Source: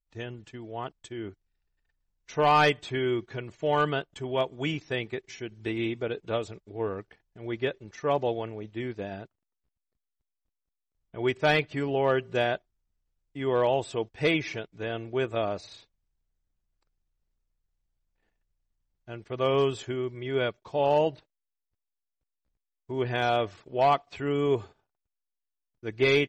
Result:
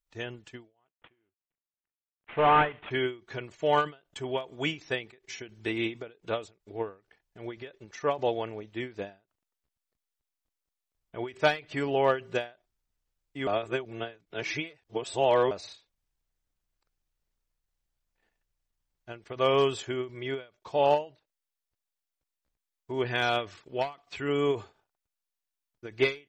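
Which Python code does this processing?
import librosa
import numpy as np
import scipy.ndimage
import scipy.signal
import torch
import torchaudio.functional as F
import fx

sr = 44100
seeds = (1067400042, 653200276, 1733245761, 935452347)

y = fx.cvsd(x, sr, bps=16000, at=(0.85, 2.91))
y = fx.peak_eq(y, sr, hz=670.0, db=-5.5, octaves=1.1, at=(23.07, 24.29))
y = fx.edit(y, sr, fx.reverse_span(start_s=13.47, length_s=2.04), tone=tone)
y = fx.low_shelf(y, sr, hz=350.0, db=-8.0)
y = fx.end_taper(y, sr, db_per_s=200.0)
y = y * librosa.db_to_amplitude(3.5)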